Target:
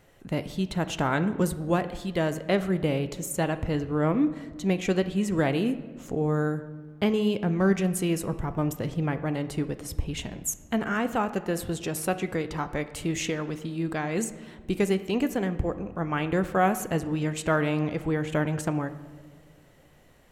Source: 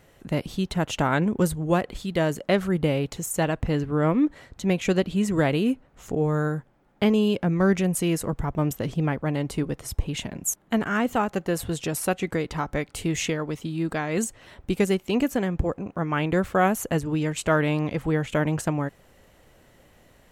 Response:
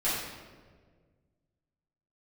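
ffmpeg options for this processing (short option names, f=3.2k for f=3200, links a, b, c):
-filter_complex "[0:a]asplit=2[a][b];[1:a]atrim=start_sample=2205,highshelf=f=6.7k:g=-11.5[c];[b][c]afir=irnorm=-1:irlink=0,volume=-19dB[d];[a][d]amix=inputs=2:normalize=0,volume=-3.5dB"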